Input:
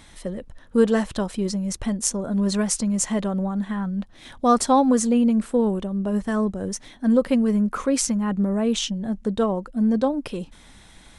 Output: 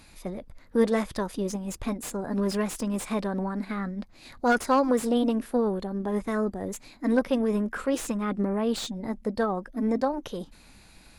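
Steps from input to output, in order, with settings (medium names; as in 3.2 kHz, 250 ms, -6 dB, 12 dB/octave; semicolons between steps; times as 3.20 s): formant shift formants +3 st; slew-rate limiter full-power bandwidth 220 Hz; trim -4.5 dB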